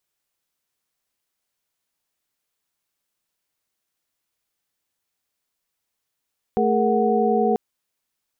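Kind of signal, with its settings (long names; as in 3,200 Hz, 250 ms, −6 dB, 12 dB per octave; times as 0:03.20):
held notes A3/G#4/A#4/F#5 sine, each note −22 dBFS 0.99 s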